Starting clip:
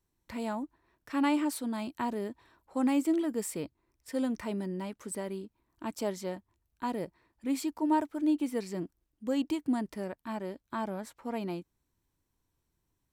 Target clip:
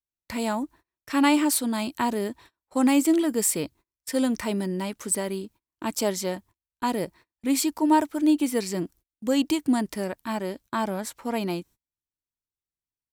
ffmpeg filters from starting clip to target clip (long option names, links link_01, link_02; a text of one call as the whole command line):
ffmpeg -i in.wav -af "agate=range=-30dB:threshold=-56dB:ratio=16:detection=peak,highshelf=frequency=2900:gain=9,volume=7dB" out.wav